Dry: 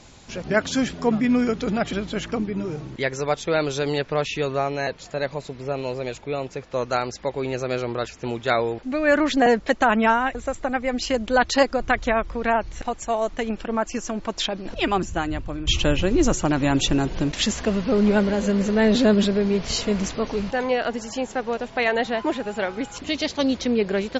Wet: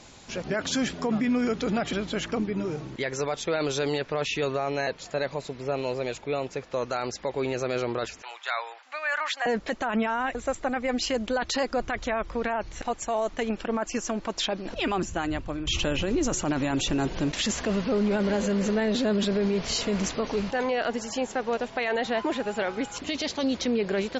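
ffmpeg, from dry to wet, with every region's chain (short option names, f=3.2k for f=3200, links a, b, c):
-filter_complex "[0:a]asettb=1/sr,asplit=3[a][b][c];[a]atrim=end=8.224[d];[b]atrim=start=8.22:end=9.46,asetpts=PTS-STARTPTS,afade=t=in:d=0.004:c=qsin,afade=t=out:st=1.236:d=0.004:c=qsin,highpass=f=870:w=0.5412,highpass=f=870:w=1.3066,equalizer=f=5.7k:t=o:w=1.1:g=-4[e];[c]atrim=start=9.456[f];[d][e]acrossfade=d=0.004:c1=hsin:c2=qsin[g];[g][f]acrossfade=d=0.004:c1=qsin:c2=hsin,lowshelf=f=160:g=-6.5,alimiter=limit=-18.5dB:level=0:latency=1:release=16"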